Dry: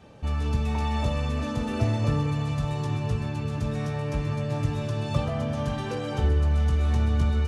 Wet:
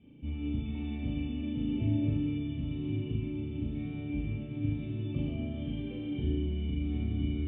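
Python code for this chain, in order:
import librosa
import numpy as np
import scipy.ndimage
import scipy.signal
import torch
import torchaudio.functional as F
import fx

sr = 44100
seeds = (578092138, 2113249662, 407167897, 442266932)

y = fx.formant_cascade(x, sr, vowel='i')
y = fx.room_flutter(y, sr, wall_m=6.5, rt60_s=0.96)
y = F.gain(torch.from_numpy(y), 2.0).numpy()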